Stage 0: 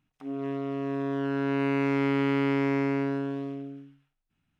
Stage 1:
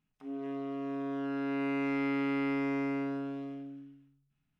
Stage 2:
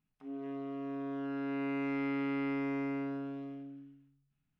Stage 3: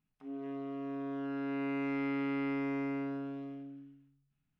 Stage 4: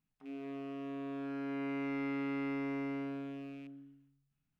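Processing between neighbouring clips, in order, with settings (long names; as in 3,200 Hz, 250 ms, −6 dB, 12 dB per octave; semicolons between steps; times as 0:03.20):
rectangular room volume 670 cubic metres, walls furnished, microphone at 1.4 metres; level −7.5 dB
bass and treble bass +2 dB, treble −5 dB; level −3.5 dB
no processing that can be heard
loose part that buzzes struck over −51 dBFS, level −46 dBFS; level −2.5 dB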